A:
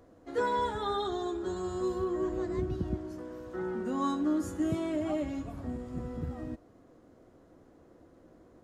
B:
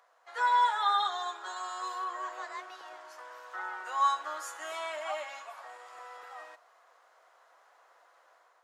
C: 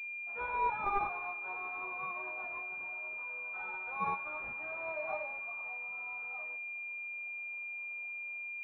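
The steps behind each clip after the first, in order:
inverse Chebyshev high-pass filter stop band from 250 Hz, stop band 60 dB; high-shelf EQ 4,900 Hz −7.5 dB; automatic gain control gain up to 5 dB; level +4.5 dB
multi-voice chorus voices 2, 0.49 Hz, delay 22 ms, depth 3 ms; switching amplifier with a slow clock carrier 2,400 Hz

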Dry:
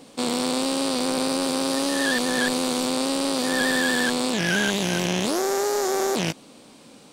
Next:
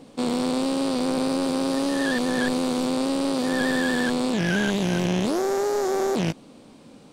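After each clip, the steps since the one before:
spectral tilt −2 dB per octave
level −2 dB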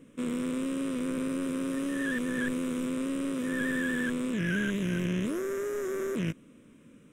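phaser with its sweep stopped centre 1,900 Hz, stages 4
level −5 dB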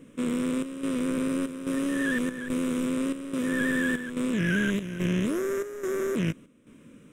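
square-wave tremolo 1.2 Hz, depth 65%, duty 75%
level +4 dB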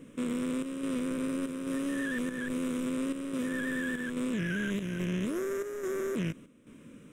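brickwall limiter −25 dBFS, peak gain reduction 9.5 dB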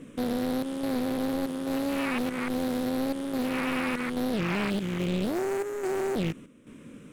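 highs frequency-modulated by the lows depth 0.85 ms
level +4.5 dB

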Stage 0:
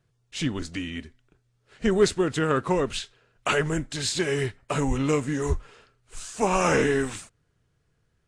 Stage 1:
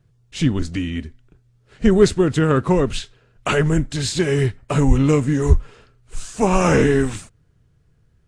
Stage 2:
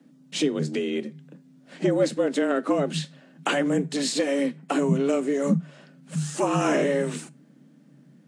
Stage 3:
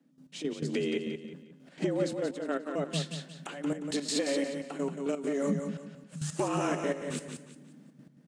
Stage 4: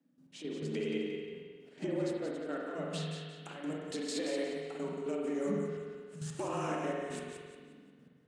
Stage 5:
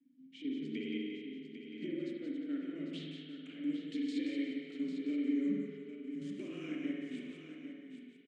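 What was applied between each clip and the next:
low-shelf EQ 290 Hz +11 dB; level +2.5 dB
downward compressor 2 to 1, threshold −33 dBFS, peak gain reduction 14.5 dB; tuned comb filter 170 Hz, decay 0.25 s, harmonics all, mix 40%; frequency shifter +140 Hz; level +7.5 dB
downward compressor, threshold −27 dBFS, peak gain reduction 10.5 dB; gate pattern "..x..x.xxxx.x" 169 BPM −12 dB; on a send: repeating echo 178 ms, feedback 32%, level −6.5 dB
convolution reverb RT60 1.6 s, pre-delay 45 ms, DRR −1.5 dB; level −8 dB
formant filter i; on a send: single-tap delay 799 ms −9.5 dB; on the sum: level +8 dB

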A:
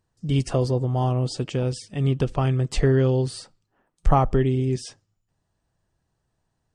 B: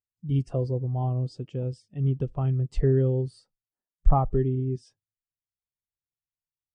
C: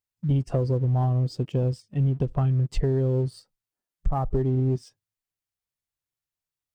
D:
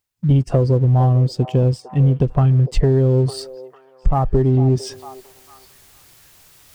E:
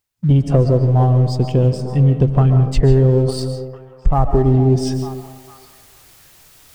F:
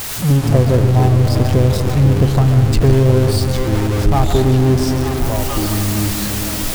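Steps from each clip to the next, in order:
every bin expanded away from the loudest bin 1.5 to 1
downward compressor 16 to 1, threshold −27 dBFS, peak gain reduction 17 dB; leveller curve on the samples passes 1; level +5.5 dB
reversed playback; upward compression, threshold −31 dBFS; reversed playback; echo through a band-pass that steps 451 ms, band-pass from 610 Hz, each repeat 0.7 octaves, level −11.5 dB; level +8.5 dB
comb and all-pass reverb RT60 0.95 s, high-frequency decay 0.3×, pre-delay 100 ms, DRR 7.5 dB; level +1.5 dB
converter with a step at zero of −16 dBFS; delay with pitch and tempo change per echo 94 ms, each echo −4 semitones, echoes 3, each echo −6 dB; level −2 dB

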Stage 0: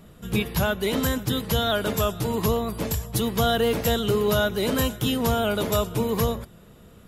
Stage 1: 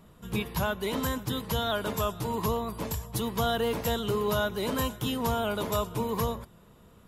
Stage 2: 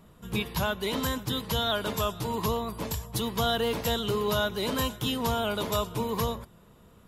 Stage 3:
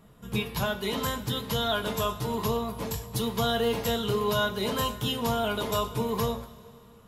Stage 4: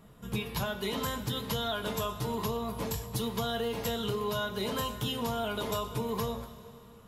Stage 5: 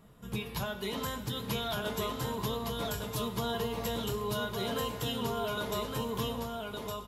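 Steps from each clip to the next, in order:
parametric band 990 Hz +8 dB 0.41 octaves; level −6.5 dB
dynamic equaliser 3,900 Hz, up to +5 dB, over −47 dBFS, Q 0.96
coupled-rooms reverb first 0.24 s, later 2.6 s, from −19 dB, DRR 4 dB; level −1.5 dB
downward compressor, threshold −29 dBFS, peak gain reduction 7.5 dB
single-tap delay 1,161 ms −3.5 dB; level −2.5 dB

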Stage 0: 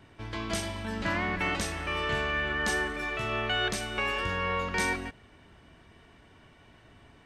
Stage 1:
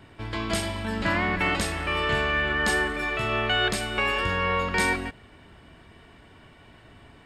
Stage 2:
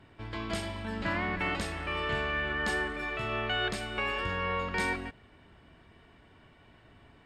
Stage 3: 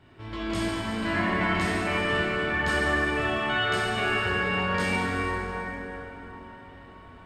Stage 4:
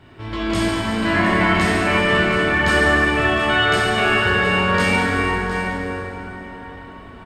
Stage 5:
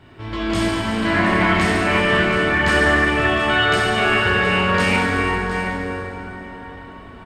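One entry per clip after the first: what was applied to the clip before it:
notch filter 6,000 Hz, Q 6.6; level +5 dB
high-shelf EQ 7,800 Hz −10 dB; level −6.5 dB
dense smooth reverb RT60 4.7 s, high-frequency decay 0.5×, DRR −7 dB; level −1 dB
single-tap delay 713 ms −11.5 dB; level +8.5 dB
highs frequency-modulated by the lows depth 0.11 ms

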